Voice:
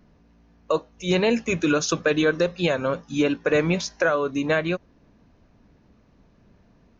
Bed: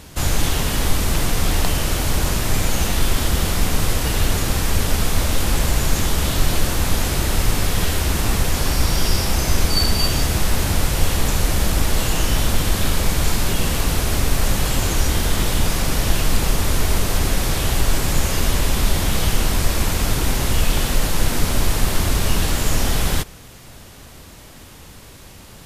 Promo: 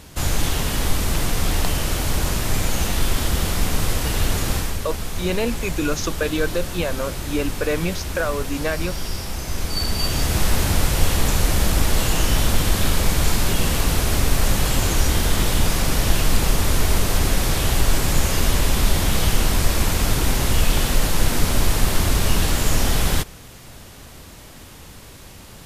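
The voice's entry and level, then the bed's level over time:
4.15 s, −2.5 dB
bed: 0:04.56 −2 dB
0:04.80 −9 dB
0:09.46 −9 dB
0:10.42 0 dB

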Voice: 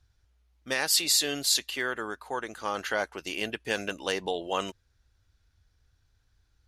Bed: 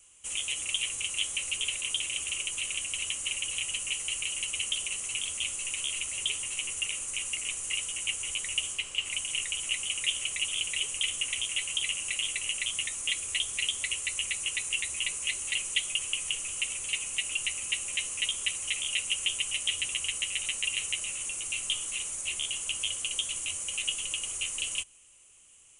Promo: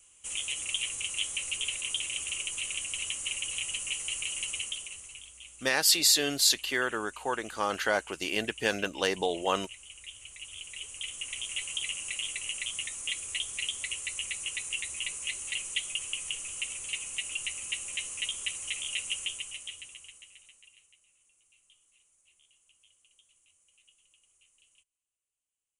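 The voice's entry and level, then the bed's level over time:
4.95 s, +1.5 dB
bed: 0:04.52 −1.5 dB
0:05.31 −16.5 dB
0:10.10 −16.5 dB
0:11.59 −3.5 dB
0:19.16 −3.5 dB
0:21.01 −33 dB

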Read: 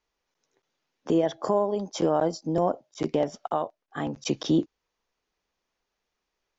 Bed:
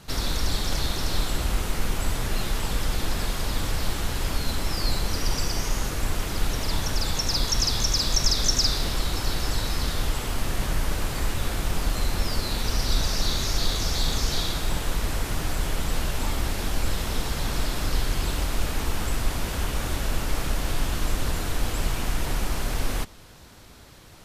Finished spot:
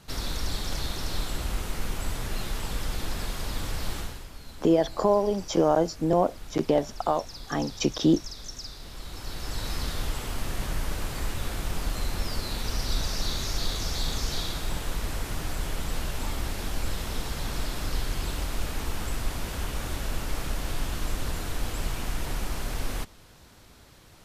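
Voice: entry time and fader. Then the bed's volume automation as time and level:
3.55 s, +2.0 dB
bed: 0:03.99 −5 dB
0:04.28 −17.5 dB
0:08.77 −17.5 dB
0:09.70 −4.5 dB

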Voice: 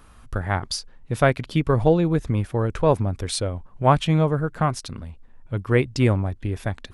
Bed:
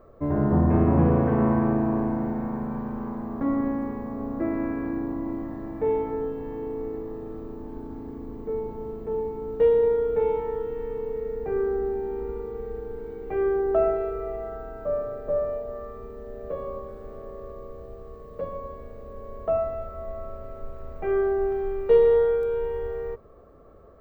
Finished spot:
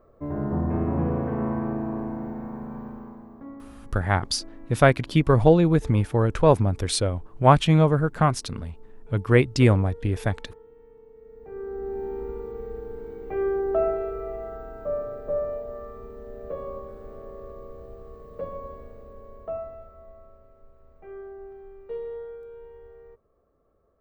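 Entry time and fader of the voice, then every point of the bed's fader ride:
3.60 s, +1.5 dB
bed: 0:02.86 −5.5 dB
0:03.72 −20 dB
0:11.14 −20 dB
0:12.03 −1.5 dB
0:18.74 −1.5 dB
0:20.56 −17 dB

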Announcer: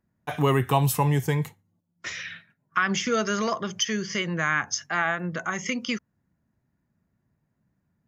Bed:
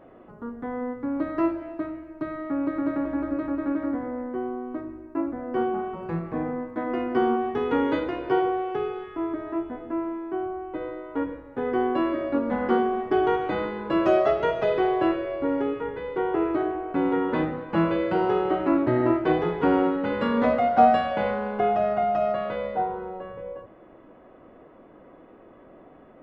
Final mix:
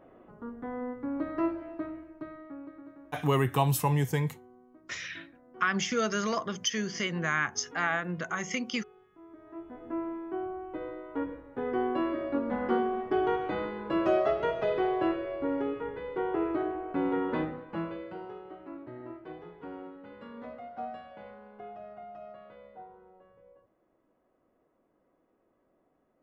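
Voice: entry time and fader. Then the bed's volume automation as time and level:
2.85 s, −4.0 dB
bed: 0:02.00 −5.5 dB
0:02.97 −24.5 dB
0:09.21 −24.5 dB
0:09.92 −5.5 dB
0:17.36 −5.5 dB
0:18.42 −22 dB

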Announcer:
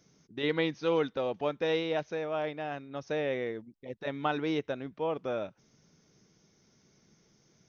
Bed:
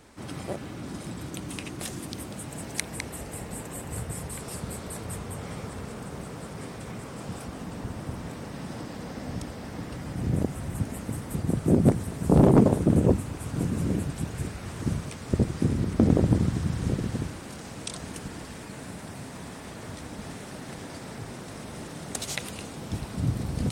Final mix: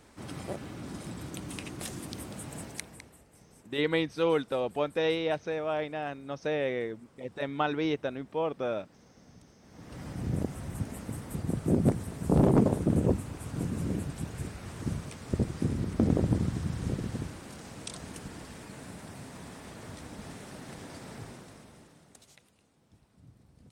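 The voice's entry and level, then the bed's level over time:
3.35 s, +1.5 dB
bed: 0:02.60 −3.5 dB
0:03.26 −22 dB
0:09.59 −22 dB
0:10.00 −5 dB
0:21.23 −5 dB
0:22.52 −29.5 dB

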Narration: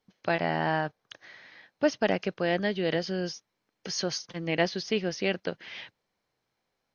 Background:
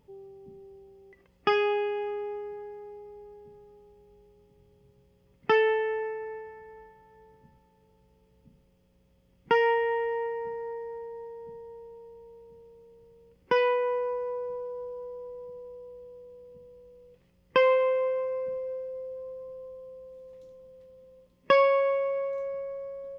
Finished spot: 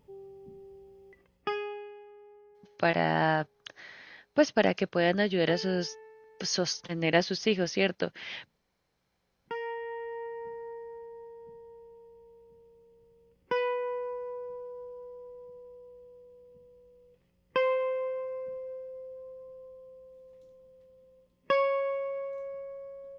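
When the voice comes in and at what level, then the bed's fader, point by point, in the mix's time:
2.55 s, +1.5 dB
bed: 0:01.11 −0.5 dB
0:02.06 −19 dB
0:09.00 −19 dB
0:10.45 −5.5 dB

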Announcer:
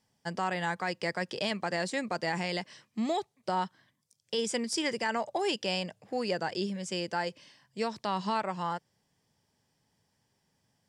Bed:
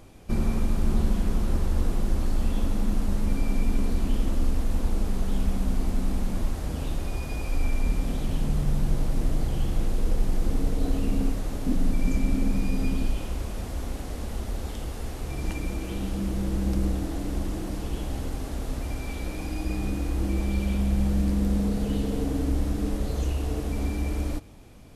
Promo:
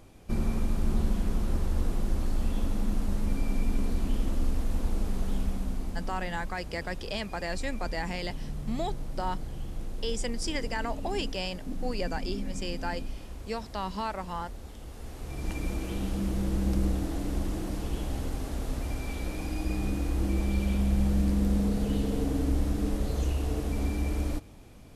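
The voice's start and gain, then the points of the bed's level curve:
5.70 s, −2.5 dB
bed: 0:05.31 −3.5 dB
0:06.24 −11 dB
0:14.78 −11 dB
0:15.66 −1.5 dB

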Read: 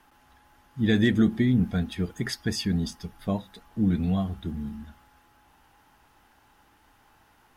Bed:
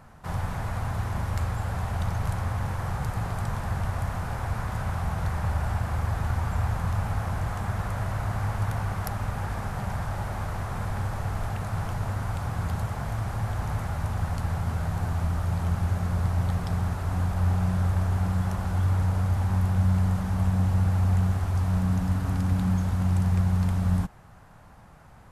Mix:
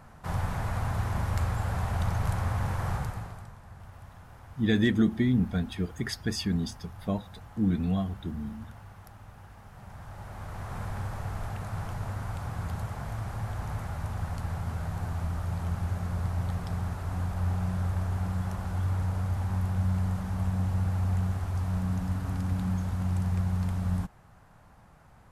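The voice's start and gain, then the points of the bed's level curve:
3.80 s, −2.5 dB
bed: 0:02.95 −0.5 dB
0:03.56 −19 dB
0:09.63 −19 dB
0:10.75 −5 dB

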